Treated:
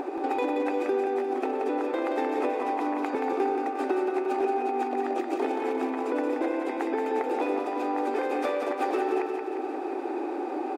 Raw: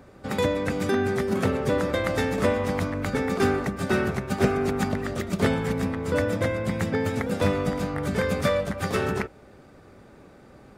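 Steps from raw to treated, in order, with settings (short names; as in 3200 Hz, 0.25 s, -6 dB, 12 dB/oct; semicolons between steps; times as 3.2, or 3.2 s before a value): brick-wall FIR high-pass 250 Hz; bell 890 Hz +5.5 dB 0.23 oct; in parallel at +2 dB: upward compressor, threshold -26 dBFS; on the sum: high shelf 4000 Hz -10.5 dB; small resonant body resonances 350/760/2500 Hz, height 15 dB, ringing for 35 ms; compressor 6:1, threshold -20 dBFS, peak gain reduction 16.5 dB; on a send: feedback echo 0.177 s, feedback 59%, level -5 dB; on the sum: gain -6 dB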